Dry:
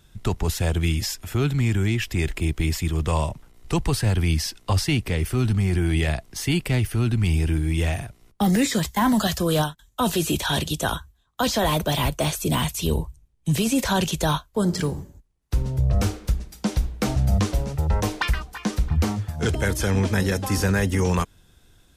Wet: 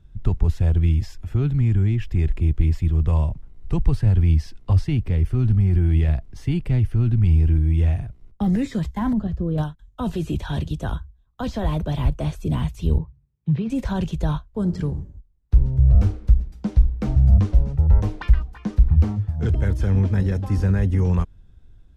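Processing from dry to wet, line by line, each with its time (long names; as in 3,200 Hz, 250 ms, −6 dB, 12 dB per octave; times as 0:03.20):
0:09.13–0:09.58: drawn EQ curve 440 Hz 0 dB, 660 Hz −8 dB, 2,300 Hz −13 dB, 10,000 Hz −24 dB
0:12.98–0:13.70: loudspeaker in its box 130–3,600 Hz, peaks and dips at 140 Hz +4 dB, 290 Hz −6 dB, 650 Hz −8 dB, 3,000 Hz −6 dB
whole clip: RIAA equalisation playback; level −8.5 dB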